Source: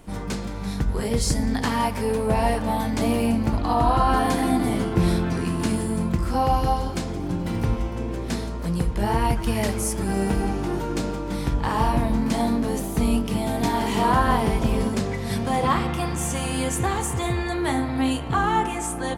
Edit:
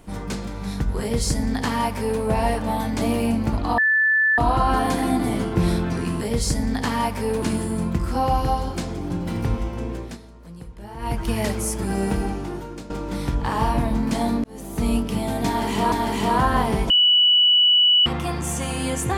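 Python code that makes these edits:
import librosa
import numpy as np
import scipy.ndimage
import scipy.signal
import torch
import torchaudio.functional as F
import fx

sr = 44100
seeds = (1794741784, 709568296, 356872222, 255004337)

y = fx.edit(x, sr, fx.duplicate(start_s=1.01, length_s=1.21, to_s=5.61),
    fx.insert_tone(at_s=3.78, length_s=0.6, hz=1750.0, db=-15.0),
    fx.fade_down_up(start_s=8.02, length_s=1.49, db=-15.0, fade_s=0.35, curve='qsin'),
    fx.fade_out_to(start_s=10.33, length_s=0.76, floor_db=-14.0),
    fx.fade_in_span(start_s=12.63, length_s=0.44),
    fx.repeat(start_s=13.66, length_s=0.45, count=2),
    fx.bleep(start_s=14.64, length_s=1.16, hz=2950.0, db=-12.5), tone=tone)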